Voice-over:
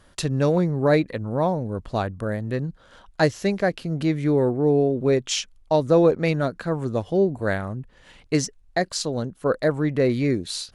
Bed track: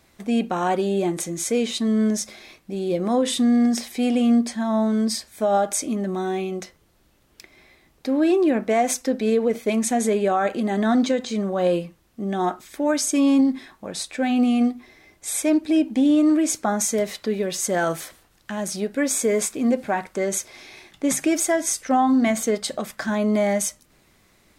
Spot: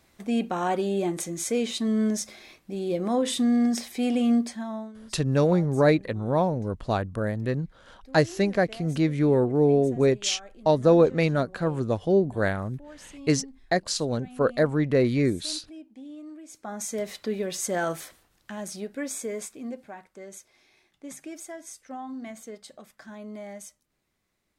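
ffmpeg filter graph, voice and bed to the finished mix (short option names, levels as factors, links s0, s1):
-filter_complex "[0:a]adelay=4950,volume=0.891[s0];[1:a]volume=6.31,afade=t=out:st=4.35:d=0.58:silence=0.0891251,afade=t=in:st=16.48:d=0.75:silence=0.1,afade=t=out:st=17.86:d=2.1:silence=0.199526[s1];[s0][s1]amix=inputs=2:normalize=0"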